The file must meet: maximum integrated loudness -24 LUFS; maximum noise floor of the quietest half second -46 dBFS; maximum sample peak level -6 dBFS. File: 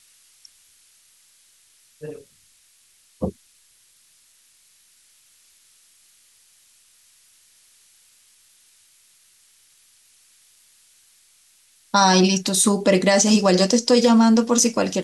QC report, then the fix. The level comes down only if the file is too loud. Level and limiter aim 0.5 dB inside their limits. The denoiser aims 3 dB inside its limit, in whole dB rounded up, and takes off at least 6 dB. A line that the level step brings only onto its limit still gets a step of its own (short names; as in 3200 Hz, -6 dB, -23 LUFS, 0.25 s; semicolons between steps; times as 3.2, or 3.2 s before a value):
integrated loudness -17.5 LUFS: fail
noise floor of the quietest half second -58 dBFS: OK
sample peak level -5.0 dBFS: fail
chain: gain -7 dB